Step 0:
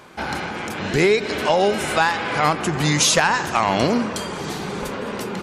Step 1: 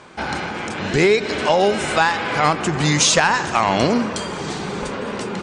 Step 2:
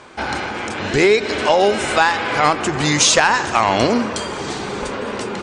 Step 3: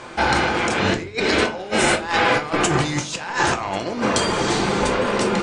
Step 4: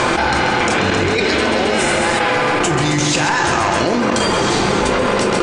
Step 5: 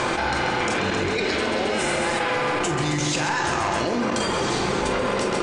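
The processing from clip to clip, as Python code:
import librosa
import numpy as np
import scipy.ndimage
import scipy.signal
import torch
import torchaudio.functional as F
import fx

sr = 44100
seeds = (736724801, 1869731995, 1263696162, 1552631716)

y1 = scipy.signal.sosfilt(scipy.signal.butter(16, 9500.0, 'lowpass', fs=sr, output='sos'), x)
y1 = y1 * 10.0 ** (1.5 / 20.0)
y2 = fx.peak_eq(y1, sr, hz=170.0, db=-10.0, octaves=0.37)
y2 = y2 * 10.0 ** (2.0 / 20.0)
y3 = fx.over_compress(y2, sr, threshold_db=-21.0, ratio=-0.5)
y3 = y3 + 10.0 ** (-21.0 / 20.0) * np.pad(y3, (int(1092 * sr / 1000.0), 0))[:len(y3)]
y3 = fx.room_shoebox(y3, sr, seeds[0], volume_m3=170.0, walls='furnished', distance_m=0.81)
y4 = fx.step_gate(y3, sr, bpm=150, pattern='xxxxx.xxx.xxxxxx', floor_db=-12.0, edge_ms=4.5)
y4 = fx.echo_feedback(y4, sr, ms=134, feedback_pct=56, wet_db=-11.0)
y4 = fx.env_flatten(y4, sr, amount_pct=100)
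y5 = fx.doubler(y4, sr, ms=46.0, db=-11.0)
y5 = y5 * 10.0 ** (-8.0 / 20.0)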